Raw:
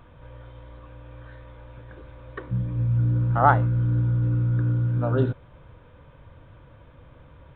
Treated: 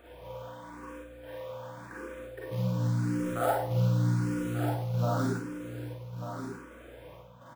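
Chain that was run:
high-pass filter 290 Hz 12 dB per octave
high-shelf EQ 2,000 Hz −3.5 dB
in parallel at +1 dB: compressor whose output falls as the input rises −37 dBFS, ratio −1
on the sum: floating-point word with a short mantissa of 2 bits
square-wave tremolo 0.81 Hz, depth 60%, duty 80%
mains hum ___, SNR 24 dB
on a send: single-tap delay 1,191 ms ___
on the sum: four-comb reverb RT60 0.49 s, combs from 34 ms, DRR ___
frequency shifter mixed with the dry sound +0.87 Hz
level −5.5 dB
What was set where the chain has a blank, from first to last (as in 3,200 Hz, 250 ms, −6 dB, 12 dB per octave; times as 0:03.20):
60 Hz, −9 dB, −4 dB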